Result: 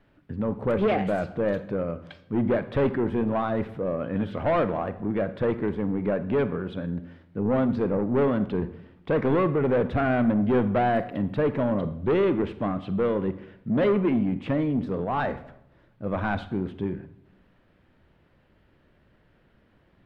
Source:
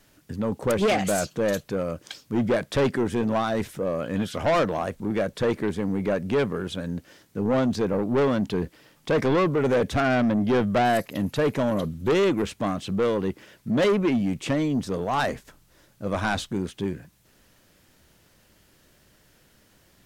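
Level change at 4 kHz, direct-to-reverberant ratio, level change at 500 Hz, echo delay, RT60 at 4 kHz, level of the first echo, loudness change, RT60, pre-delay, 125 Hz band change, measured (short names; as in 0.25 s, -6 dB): -11.0 dB, 12.0 dB, -1.0 dB, none, 0.55 s, none, -1.0 dB, 0.80 s, 32 ms, 0.0 dB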